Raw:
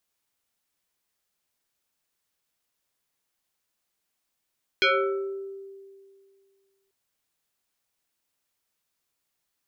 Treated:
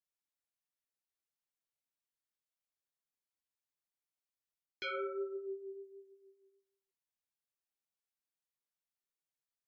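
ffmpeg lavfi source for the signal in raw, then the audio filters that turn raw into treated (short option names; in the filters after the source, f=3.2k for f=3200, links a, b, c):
-f lavfi -i "aevalsrc='0.15*pow(10,-3*t/2.16)*sin(2*PI*391*t+4*pow(10,-3*t/0.97)*sin(2*PI*2.39*391*t))':d=2.09:s=44100"
-af "afftdn=nr=15:nf=-49,areverse,acompressor=threshold=-34dB:ratio=12,areverse,flanger=delay=5.5:depth=5.5:regen=22:speed=1.3:shape=triangular"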